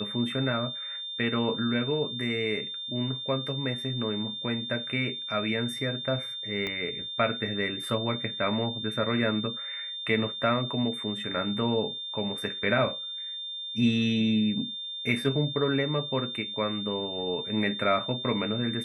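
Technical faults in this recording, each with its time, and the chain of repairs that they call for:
whine 3.6 kHz -34 dBFS
6.67 s: pop -19 dBFS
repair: de-click; band-stop 3.6 kHz, Q 30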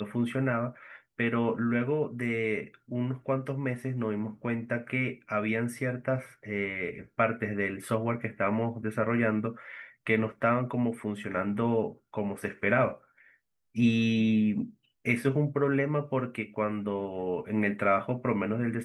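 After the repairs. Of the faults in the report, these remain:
6.67 s: pop

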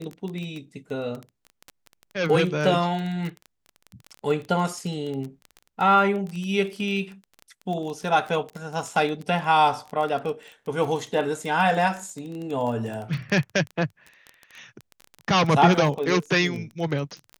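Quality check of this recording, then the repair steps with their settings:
crackle 20 per s -29 dBFS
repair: de-click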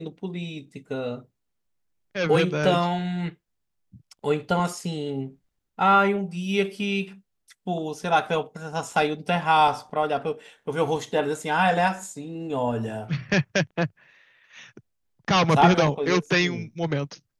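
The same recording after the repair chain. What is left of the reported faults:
nothing left

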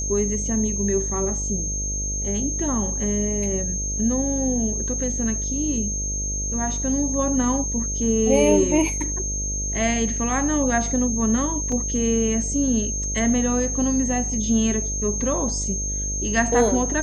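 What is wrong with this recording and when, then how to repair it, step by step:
buzz 50 Hz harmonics 13 -29 dBFS
whine 6.4 kHz -26 dBFS
11.72 s: dropout 3.6 ms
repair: de-hum 50 Hz, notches 13; band-stop 6.4 kHz, Q 30; interpolate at 11.72 s, 3.6 ms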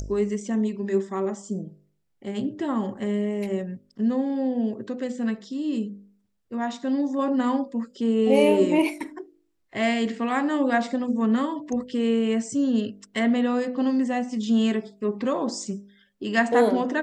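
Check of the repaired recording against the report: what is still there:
nothing left

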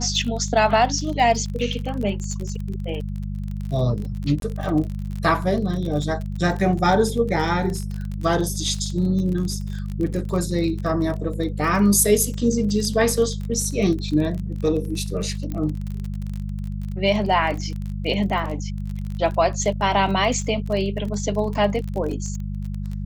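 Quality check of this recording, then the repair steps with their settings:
crackle 31 per s -28 dBFS
hum 50 Hz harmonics 4 -28 dBFS
4.40–4.42 s: dropout 22 ms
15.52 s: pop -17 dBFS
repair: de-click; de-hum 50 Hz, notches 4; interpolate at 4.40 s, 22 ms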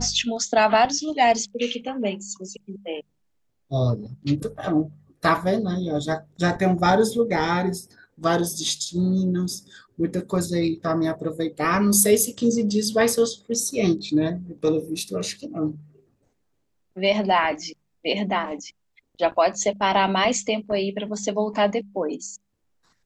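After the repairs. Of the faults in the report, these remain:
nothing left

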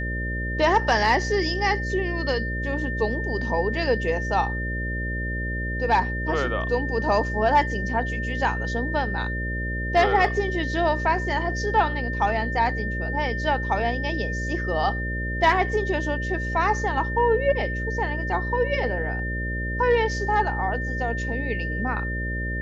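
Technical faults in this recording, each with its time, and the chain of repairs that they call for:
buzz 60 Hz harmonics 10 -29 dBFS
whine 1.8 kHz -30 dBFS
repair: band-stop 1.8 kHz, Q 30; de-hum 60 Hz, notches 10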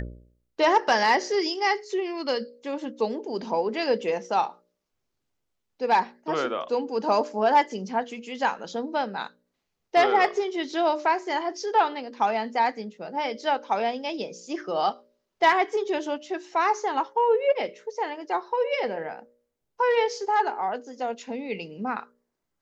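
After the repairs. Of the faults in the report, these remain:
nothing left

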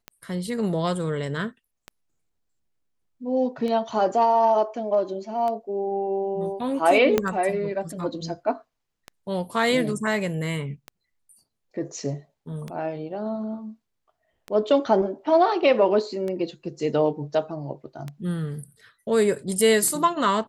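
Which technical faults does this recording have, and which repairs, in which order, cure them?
tick 33 1/3 rpm -19 dBFS
7.18 s: pop -7 dBFS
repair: de-click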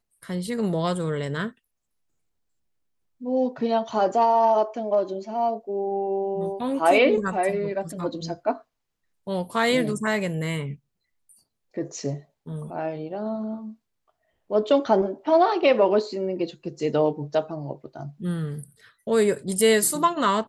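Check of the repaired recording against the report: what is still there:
7.18 s: pop

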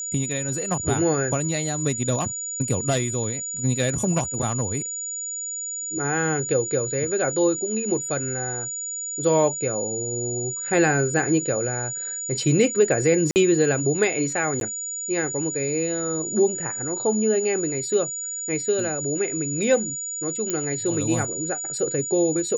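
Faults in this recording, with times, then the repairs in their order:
whine 6.9 kHz -28 dBFS
13.31–13.36 s: dropout 49 ms
14.60–14.61 s: dropout 12 ms
20.50 s: pop -11 dBFS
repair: de-click; band-stop 6.9 kHz, Q 30; interpolate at 13.31 s, 49 ms; interpolate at 14.60 s, 12 ms

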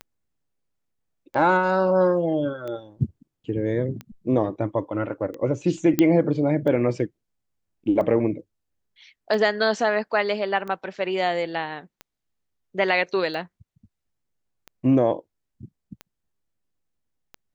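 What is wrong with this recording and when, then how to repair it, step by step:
tick 45 rpm -22 dBFS
5.99 s: pop -6 dBFS
10.96 s: dropout 3.6 ms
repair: de-click; interpolate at 10.96 s, 3.6 ms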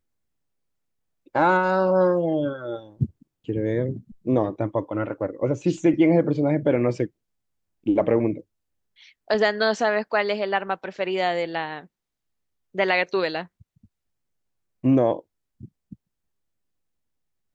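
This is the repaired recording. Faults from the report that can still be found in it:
nothing left

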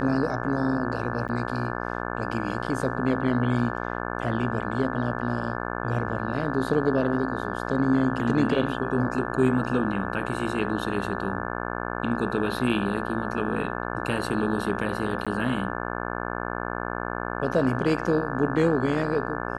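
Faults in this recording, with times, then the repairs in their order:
buzz 60 Hz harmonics 29 -31 dBFS
1.28–1.29 s: dropout 9 ms
15.25–15.27 s: dropout 16 ms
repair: de-hum 60 Hz, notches 29; interpolate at 1.28 s, 9 ms; interpolate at 15.25 s, 16 ms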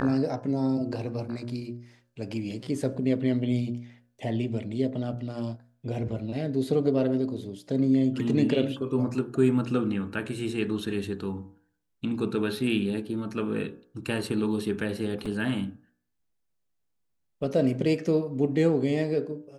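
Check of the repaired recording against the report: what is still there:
nothing left

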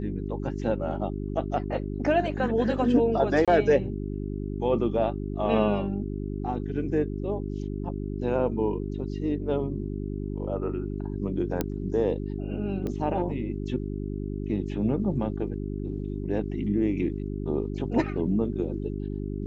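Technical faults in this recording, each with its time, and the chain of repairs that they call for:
hum 50 Hz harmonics 8 -32 dBFS
3.45–3.48 s: dropout 26 ms
11.61 s: pop -12 dBFS
12.87 s: pop -21 dBFS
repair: de-click; de-hum 50 Hz, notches 8; interpolate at 3.45 s, 26 ms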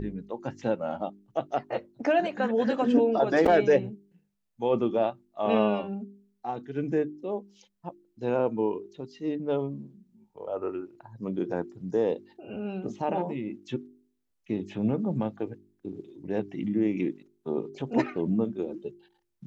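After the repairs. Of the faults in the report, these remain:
nothing left

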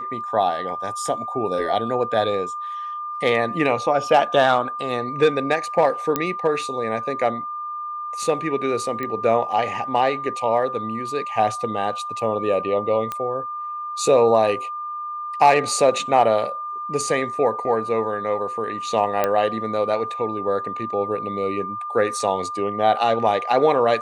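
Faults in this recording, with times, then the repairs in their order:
whine 1.2 kHz -27 dBFS
6.16 s: pop -6 dBFS
9.03 s: pop -15 dBFS
13.12 s: pop -13 dBFS
19.24 s: pop -7 dBFS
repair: de-click; band-stop 1.2 kHz, Q 30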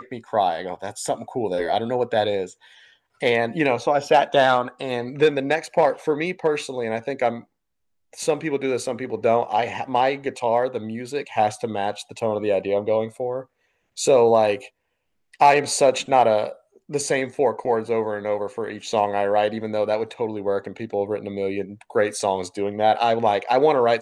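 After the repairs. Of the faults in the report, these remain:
13.12 s: pop

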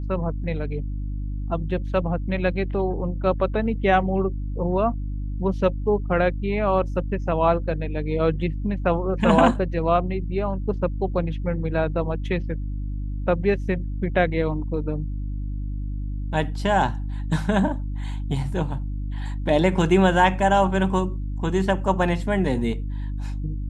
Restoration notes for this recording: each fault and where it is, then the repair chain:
hum 50 Hz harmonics 6 -28 dBFS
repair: de-hum 50 Hz, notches 6

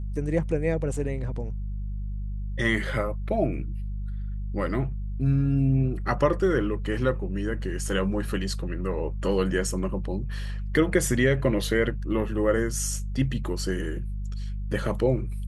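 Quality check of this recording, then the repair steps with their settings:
hum 50 Hz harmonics 4 -31 dBFS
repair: de-hum 50 Hz, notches 4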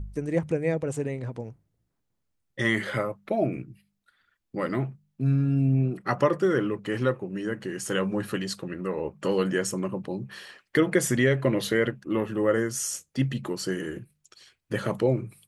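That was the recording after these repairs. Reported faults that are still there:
nothing left

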